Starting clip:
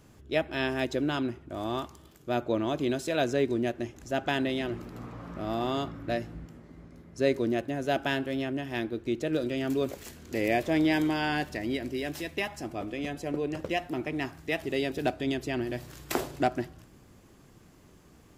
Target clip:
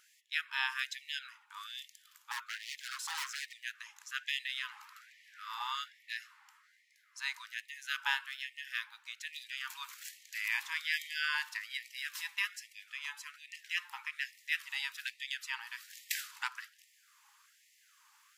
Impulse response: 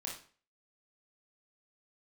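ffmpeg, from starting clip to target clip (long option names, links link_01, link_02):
-filter_complex "[0:a]asettb=1/sr,asplit=3[link_01][link_02][link_03];[link_01]atrim=end=2.314[link_04];[link_02]atrim=start=2.31:end=3.53,asetpts=PTS-STARTPTS,afade=type=in:duration=0.004:curve=qsin,afade=type=out:start_time=1.216:duration=0.004:curve=qsin,aeval=exprs='0.0282*(abs(mod(val(0)/0.0282+3,4)-2)-1)':channel_layout=same[link_05];[link_03]atrim=start=3.526[link_06];[link_04][link_05]acrossfade=duration=0.004:curve1=hsin:curve2=qsin[link_07];[link_07][link_06]acrossfade=duration=0.004:curve1=qsin:curve2=hsin,afftfilt=real='re*gte(b*sr/1024,800*pow(1800/800,0.5+0.5*sin(2*PI*1.2*pts/sr)))':imag='im*gte(b*sr/1024,800*pow(1800/800,0.5+0.5*sin(2*PI*1.2*pts/sr)))':win_size=1024:overlap=0.75"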